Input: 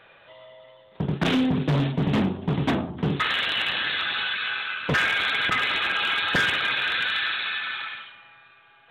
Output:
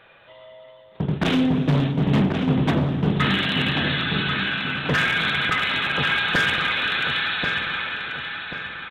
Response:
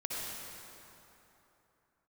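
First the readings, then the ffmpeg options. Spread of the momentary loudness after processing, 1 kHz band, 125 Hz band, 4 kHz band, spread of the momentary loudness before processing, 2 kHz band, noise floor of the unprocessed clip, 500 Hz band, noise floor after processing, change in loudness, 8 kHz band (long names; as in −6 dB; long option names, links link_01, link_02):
8 LU, +2.5 dB, +5.0 dB, +1.5 dB, 7 LU, +2.0 dB, −54 dBFS, +3.0 dB, −49 dBFS, +2.0 dB, +1.0 dB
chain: -filter_complex "[0:a]asplit=2[link_01][link_02];[link_02]adelay=1087,lowpass=frequency=2500:poles=1,volume=-4.5dB,asplit=2[link_03][link_04];[link_04]adelay=1087,lowpass=frequency=2500:poles=1,volume=0.43,asplit=2[link_05][link_06];[link_06]adelay=1087,lowpass=frequency=2500:poles=1,volume=0.43,asplit=2[link_07][link_08];[link_08]adelay=1087,lowpass=frequency=2500:poles=1,volume=0.43,asplit=2[link_09][link_10];[link_10]adelay=1087,lowpass=frequency=2500:poles=1,volume=0.43[link_11];[link_01][link_03][link_05][link_07][link_09][link_11]amix=inputs=6:normalize=0,asplit=2[link_12][link_13];[1:a]atrim=start_sample=2205,lowshelf=frequency=380:gain=11.5[link_14];[link_13][link_14]afir=irnorm=-1:irlink=0,volume=-16.5dB[link_15];[link_12][link_15]amix=inputs=2:normalize=0"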